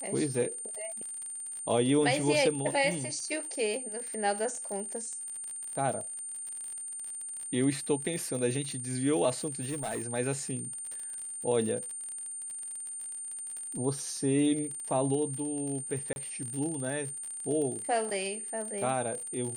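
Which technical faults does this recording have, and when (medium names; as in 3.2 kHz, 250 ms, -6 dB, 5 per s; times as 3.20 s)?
crackle 50 per s -36 dBFS
whine 9 kHz -37 dBFS
9.62–10.02 s: clipped -30 dBFS
16.13–16.16 s: dropout 31 ms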